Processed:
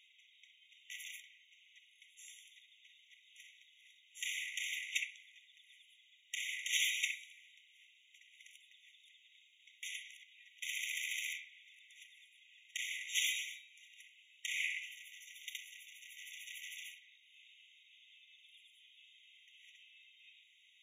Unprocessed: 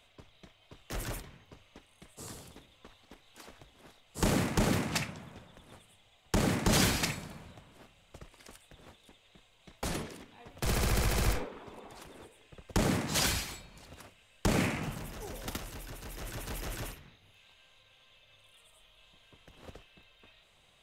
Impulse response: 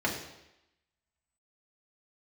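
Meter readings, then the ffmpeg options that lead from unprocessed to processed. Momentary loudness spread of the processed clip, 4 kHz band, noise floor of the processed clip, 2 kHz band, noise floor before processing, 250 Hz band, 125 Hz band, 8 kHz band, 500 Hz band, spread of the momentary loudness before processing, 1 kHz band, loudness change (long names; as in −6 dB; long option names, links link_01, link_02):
24 LU, −3.0 dB, −68 dBFS, −1.5 dB, −65 dBFS, below −40 dB, below −40 dB, −5.5 dB, below −40 dB, 21 LU, below −40 dB, −7.0 dB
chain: -filter_complex "[0:a]highshelf=frequency=4900:gain=-10.5,asplit=2[link_01][link_02];[1:a]atrim=start_sample=2205,asetrate=70560,aresample=44100[link_03];[link_02][link_03]afir=irnorm=-1:irlink=0,volume=-26dB[link_04];[link_01][link_04]amix=inputs=2:normalize=0,afftfilt=real='re*eq(mod(floor(b*sr/1024/1900),2),1)':imag='im*eq(mod(floor(b*sr/1024/1900),2),1)':win_size=1024:overlap=0.75,volume=3dB"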